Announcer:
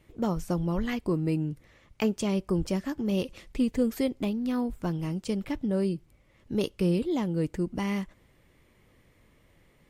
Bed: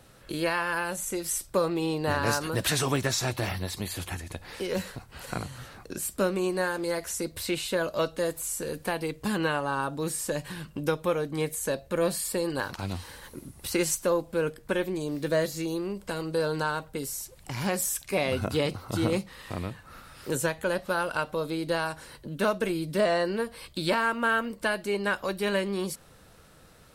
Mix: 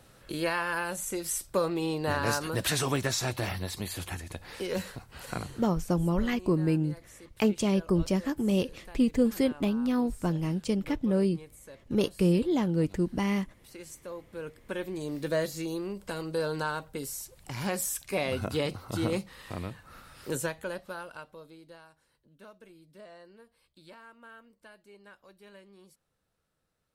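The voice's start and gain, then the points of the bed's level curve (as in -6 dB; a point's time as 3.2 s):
5.40 s, +1.5 dB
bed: 5.47 s -2 dB
5.86 s -20 dB
13.8 s -20 dB
15.08 s -3 dB
20.34 s -3 dB
21.9 s -25.5 dB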